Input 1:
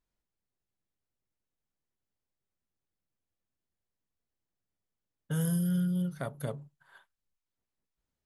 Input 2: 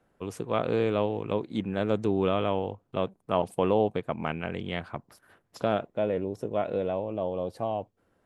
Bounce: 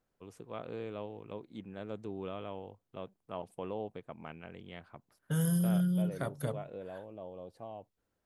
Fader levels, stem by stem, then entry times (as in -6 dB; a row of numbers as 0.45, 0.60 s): 0.0, -15.0 dB; 0.00, 0.00 s